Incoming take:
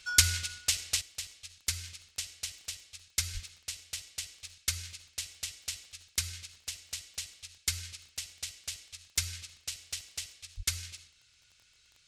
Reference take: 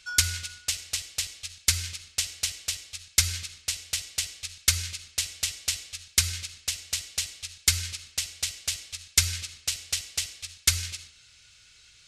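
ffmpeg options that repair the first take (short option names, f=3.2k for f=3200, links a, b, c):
-filter_complex "[0:a]adeclick=t=4,asplit=3[a][b][c];[a]afade=t=out:st=3.33:d=0.02[d];[b]highpass=f=140:w=0.5412,highpass=f=140:w=1.3066,afade=t=in:st=3.33:d=0.02,afade=t=out:st=3.45:d=0.02[e];[c]afade=t=in:st=3.45:d=0.02[f];[d][e][f]amix=inputs=3:normalize=0,asplit=3[g][h][i];[g]afade=t=out:st=10.56:d=0.02[j];[h]highpass=f=140:w=0.5412,highpass=f=140:w=1.3066,afade=t=in:st=10.56:d=0.02,afade=t=out:st=10.68:d=0.02[k];[i]afade=t=in:st=10.68:d=0.02[l];[j][k][l]amix=inputs=3:normalize=0,asetnsamples=n=441:p=0,asendcmd='1.01 volume volume 9.5dB',volume=0dB"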